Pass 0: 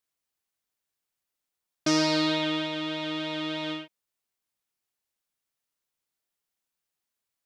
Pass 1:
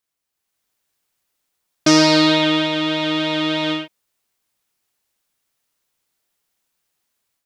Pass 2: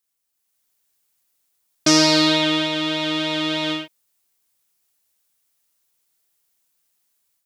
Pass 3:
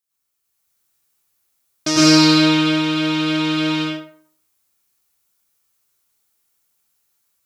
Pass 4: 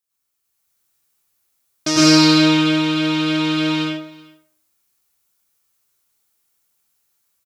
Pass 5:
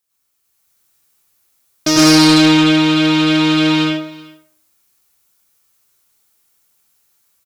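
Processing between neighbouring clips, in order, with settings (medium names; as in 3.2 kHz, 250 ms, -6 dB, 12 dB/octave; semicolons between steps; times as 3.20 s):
level rider gain up to 8 dB; trim +3.5 dB
treble shelf 5.2 kHz +10 dB; trim -3.5 dB
plate-style reverb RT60 0.56 s, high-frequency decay 0.6×, pre-delay 90 ms, DRR -7.5 dB; trim -5 dB
delay 379 ms -22.5 dB
saturation -12 dBFS, distortion -12 dB; trim +7 dB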